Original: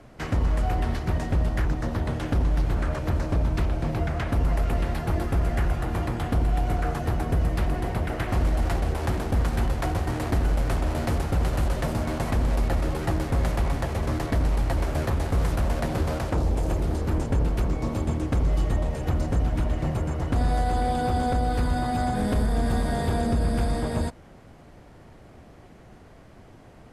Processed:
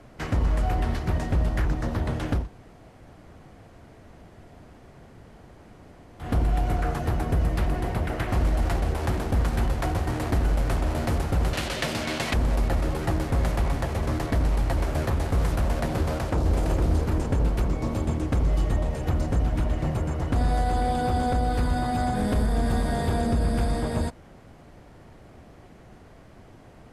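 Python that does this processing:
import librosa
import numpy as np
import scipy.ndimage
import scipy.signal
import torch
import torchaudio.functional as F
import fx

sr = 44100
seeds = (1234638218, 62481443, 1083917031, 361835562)

y = fx.weighting(x, sr, curve='D', at=(11.53, 12.34))
y = fx.echo_throw(y, sr, start_s=15.99, length_s=0.58, ms=460, feedback_pct=50, wet_db=-5.0)
y = fx.edit(y, sr, fx.room_tone_fill(start_s=2.41, length_s=3.84, crossfade_s=0.16), tone=tone)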